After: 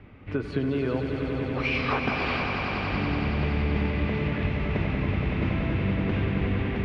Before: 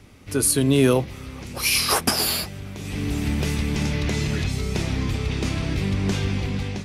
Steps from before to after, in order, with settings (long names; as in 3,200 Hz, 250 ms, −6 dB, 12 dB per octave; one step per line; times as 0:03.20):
low-pass filter 2,600 Hz 24 dB per octave
downward compressor, threshold −24 dBFS, peak gain reduction 11.5 dB
echo that builds up and dies away 94 ms, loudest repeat 5, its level −8 dB